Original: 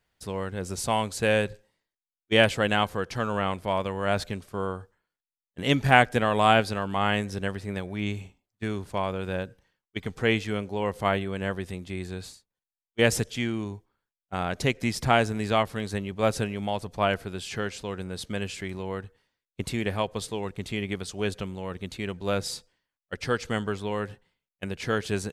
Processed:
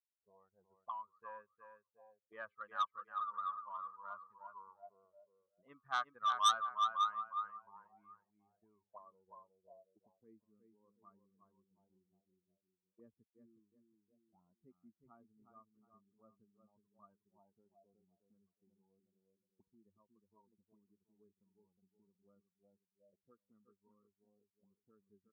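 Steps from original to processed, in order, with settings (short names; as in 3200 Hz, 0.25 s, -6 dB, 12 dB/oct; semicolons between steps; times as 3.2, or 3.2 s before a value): per-bin expansion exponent 2; low-pass sweep 1300 Hz -> 270 Hz, 7.9–10.26; on a send: feedback echo 0.363 s, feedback 31%, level -7 dB; on the sum: auto-wah 510–1200 Hz, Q 19, up, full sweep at -31.5 dBFS; core saturation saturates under 3500 Hz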